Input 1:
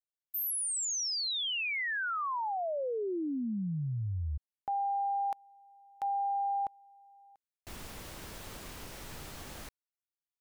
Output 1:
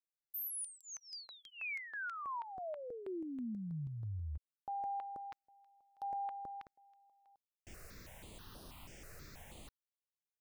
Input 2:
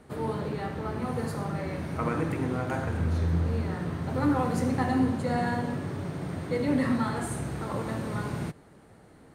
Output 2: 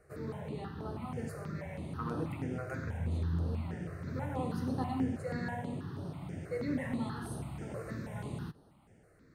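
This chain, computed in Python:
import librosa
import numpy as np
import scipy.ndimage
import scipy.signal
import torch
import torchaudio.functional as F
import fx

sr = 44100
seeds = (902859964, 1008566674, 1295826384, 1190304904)

y = fx.phaser_held(x, sr, hz=6.2, low_hz=910.0, high_hz=7400.0)
y = y * librosa.db_to_amplitude(-6.5)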